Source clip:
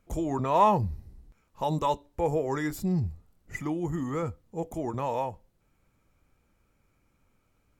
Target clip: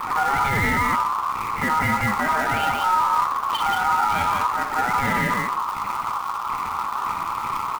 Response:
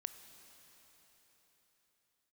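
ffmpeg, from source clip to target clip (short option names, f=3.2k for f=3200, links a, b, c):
-filter_complex "[0:a]aeval=exprs='val(0)+0.5*0.0398*sgn(val(0))':c=same,acrossover=split=130|900[a][b][c];[a]acrusher=bits=5:mix=0:aa=0.000001[d];[d][b][c]amix=inputs=3:normalize=0,equalizer=f=125:t=o:w=1:g=7,equalizer=f=250:t=o:w=1:g=7,equalizer=f=500:t=o:w=1:g=-9,equalizer=f=1k:t=o:w=1:g=5,equalizer=f=2k:t=o:w=1:g=3,equalizer=f=4k:t=o:w=1:g=7,equalizer=f=8k:t=o:w=1:g=-9,afwtdn=0.0282,acontrast=71,aecho=1:1:58.31|180.8:0.316|0.631,alimiter=limit=-10dB:level=0:latency=1:release=15,acrusher=bits=3:mode=log:mix=0:aa=0.000001,aeval=exprs='val(0)*sin(2*PI*1100*n/s)':c=same,flanger=delay=7.4:depth=5.1:regen=66:speed=2:shape=triangular,volume=3dB"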